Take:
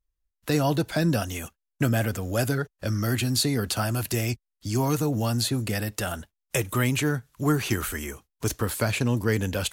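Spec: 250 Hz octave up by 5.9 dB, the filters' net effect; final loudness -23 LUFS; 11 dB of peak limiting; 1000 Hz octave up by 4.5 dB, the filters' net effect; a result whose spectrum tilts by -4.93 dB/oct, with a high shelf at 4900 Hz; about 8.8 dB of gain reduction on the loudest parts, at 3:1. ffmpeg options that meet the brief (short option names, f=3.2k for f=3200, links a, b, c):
-af "equalizer=f=250:t=o:g=7,equalizer=f=1k:t=o:g=5.5,highshelf=f=4.9k:g=4,acompressor=threshold=-27dB:ratio=3,volume=9.5dB,alimiter=limit=-13dB:level=0:latency=1"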